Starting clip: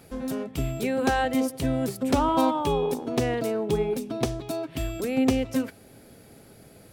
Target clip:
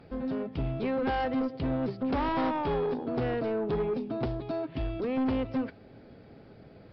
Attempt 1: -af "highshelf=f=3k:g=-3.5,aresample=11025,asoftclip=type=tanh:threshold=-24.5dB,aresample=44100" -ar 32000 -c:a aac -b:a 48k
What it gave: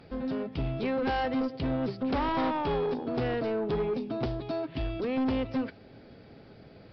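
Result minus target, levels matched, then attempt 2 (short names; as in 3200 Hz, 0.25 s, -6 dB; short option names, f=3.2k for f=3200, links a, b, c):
4000 Hz band +3.5 dB
-af "highshelf=f=3k:g=-12,aresample=11025,asoftclip=type=tanh:threshold=-24.5dB,aresample=44100" -ar 32000 -c:a aac -b:a 48k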